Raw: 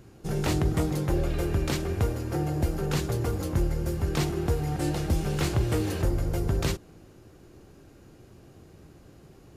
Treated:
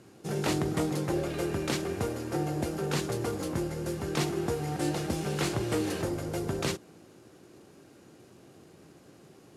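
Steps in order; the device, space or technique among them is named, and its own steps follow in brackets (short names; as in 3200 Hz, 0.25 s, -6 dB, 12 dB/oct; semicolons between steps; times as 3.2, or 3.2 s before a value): early wireless headset (HPF 170 Hz 12 dB/oct; CVSD 64 kbps)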